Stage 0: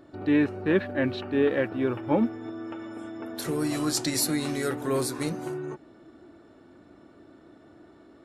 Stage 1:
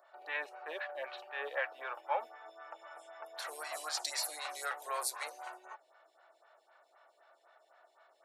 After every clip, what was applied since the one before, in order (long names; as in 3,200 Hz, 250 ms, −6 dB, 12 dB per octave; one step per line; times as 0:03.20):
Butterworth high-pass 630 Hz 36 dB per octave
phaser with staggered stages 3.9 Hz
level −1 dB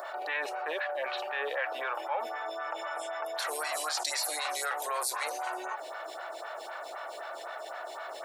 envelope flattener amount 70%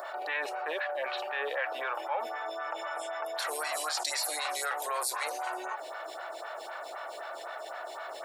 notch filter 6,100 Hz, Q 24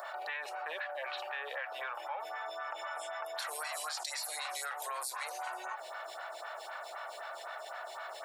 high-pass filter 660 Hz 12 dB per octave
downward compressor, threshold −34 dBFS, peak gain reduction 6.5 dB
level −1.5 dB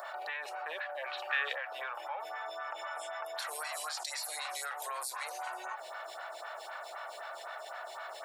gain on a spectral selection 0:01.29–0:01.53, 1,100–8,200 Hz +9 dB